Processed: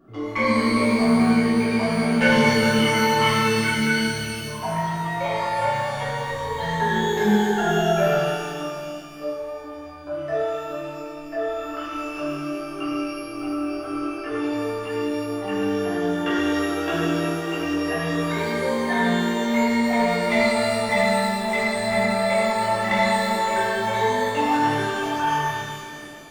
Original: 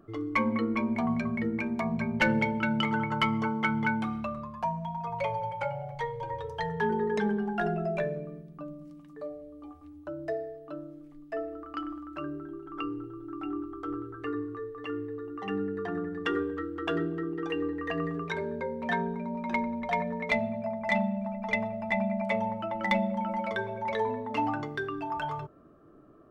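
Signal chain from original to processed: spectral gain 3.29–4.48, 490–1400 Hz -26 dB; shimmer reverb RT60 2.1 s, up +12 st, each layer -8 dB, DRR -11.5 dB; gain -3 dB

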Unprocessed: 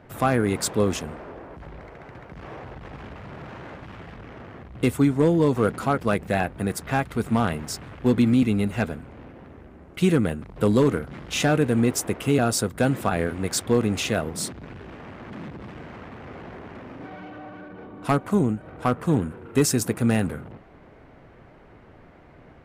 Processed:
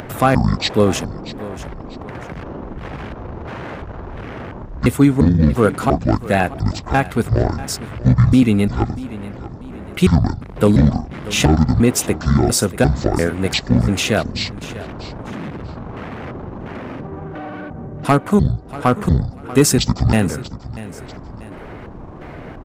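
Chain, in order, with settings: trilling pitch shifter -11.5 st, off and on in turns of 0.347 s; feedback echo 0.639 s, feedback 23%, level -17 dB; upward compressor, threshold -31 dBFS; gain +7.5 dB

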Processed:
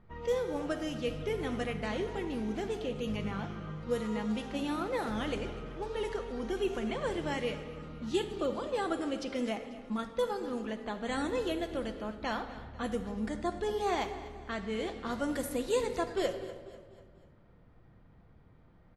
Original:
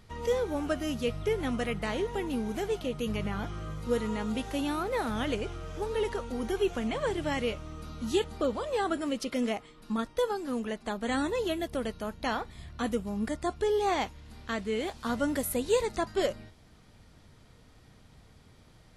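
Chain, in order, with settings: low-pass opened by the level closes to 1400 Hz, open at -25 dBFS; feedback echo 0.245 s, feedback 47%, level -17 dB; shoebox room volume 1700 m³, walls mixed, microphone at 0.79 m; gain -4 dB

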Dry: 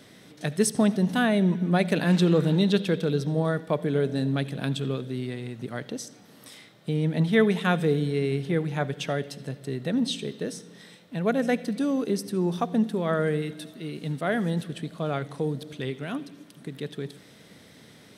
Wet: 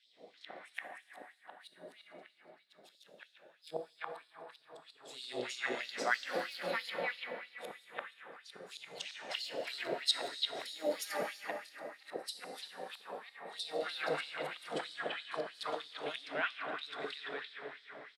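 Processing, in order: feedback echo 0.294 s, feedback 29%, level -12 dB; low-pass opened by the level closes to 1500 Hz, open at -23 dBFS; compressor 6:1, threshold -25 dBFS, peak gain reduction 10 dB; echoes that change speed 0.161 s, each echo +2 st, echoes 2, each echo -6 dB; flipped gate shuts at -20 dBFS, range -40 dB; notch 6100 Hz, Q 8.3; three bands offset in time highs, lows, mids 60/340 ms, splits 650/3400 Hz; plate-style reverb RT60 4.3 s, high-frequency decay 0.5×, DRR 3 dB; LFO high-pass sine 3.1 Hz 590–4300 Hz; gain +3 dB

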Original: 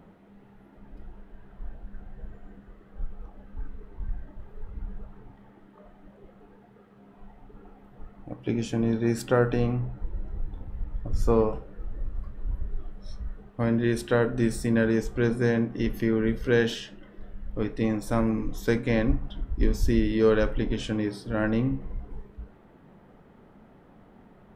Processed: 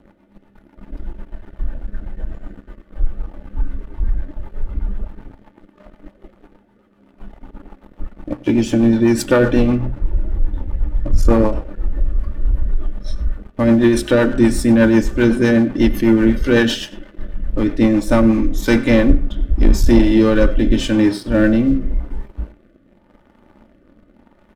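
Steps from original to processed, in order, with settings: comb 3.4 ms, depth 65%; de-hum 128.5 Hz, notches 28; sample leveller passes 2; rotary speaker horn 8 Hz, later 0.85 Hz, at 17.8; on a send: echo 97 ms -21 dB; on the sum: gain +5.5 dB; Vorbis 192 kbps 48000 Hz

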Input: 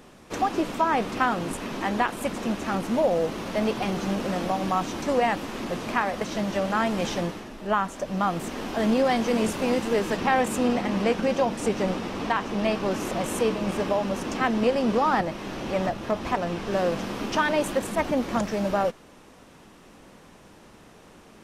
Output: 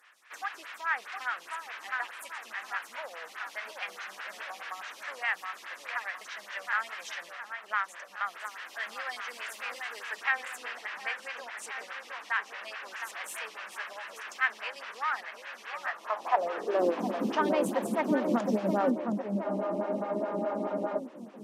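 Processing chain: added harmonics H 4 -26 dB, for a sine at -10 dBFS; high-pass sweep 1700 Hz -> 220 Hz, 15.75–17.1; on a send: darkening echo 0.715 s, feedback 58%, low-pass 1800 Hz, level -5 dB; on the sum: spectral freeze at 19.46, 1.53 s; photocell phaser 4.8 Hz; gain -4 dB

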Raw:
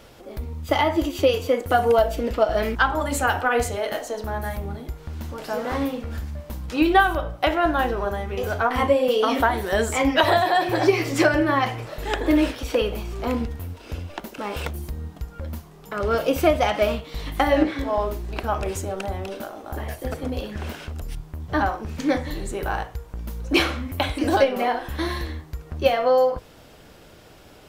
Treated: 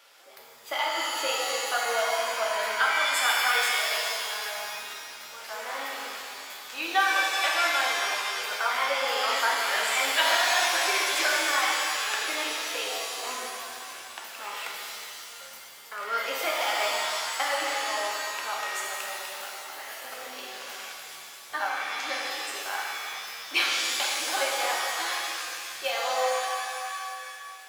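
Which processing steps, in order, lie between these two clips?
HPF 1100 Hz 12 dB/oct; shimmer reverb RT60 2.3 s, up +7 st, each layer -2 dB, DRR -2 dB; gain -4.5 dB

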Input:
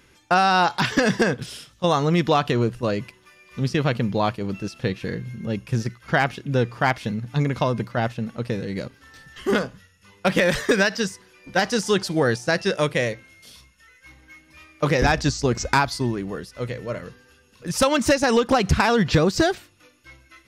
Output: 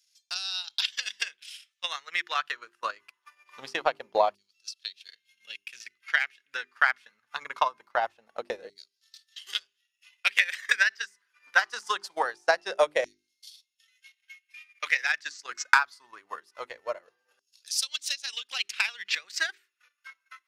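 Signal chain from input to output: LFO high-pass saw down 0.23 Hz 610–5100 Hz; transient shaper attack +10 dB, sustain -12 dB; notches 50/100/150/200/250/300/350/400 Hz; gain -10.5 dB

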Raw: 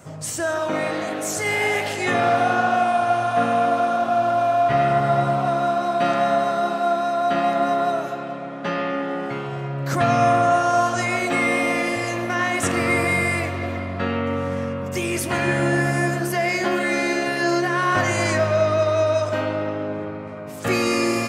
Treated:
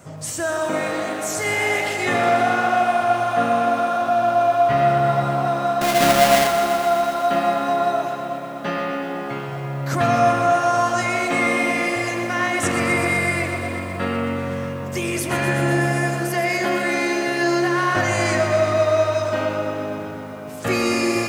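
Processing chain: 5.81–6.47 half-waves squared off; lo-fi delay 0.124 s, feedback 80%, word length 8-bit, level -10 dB

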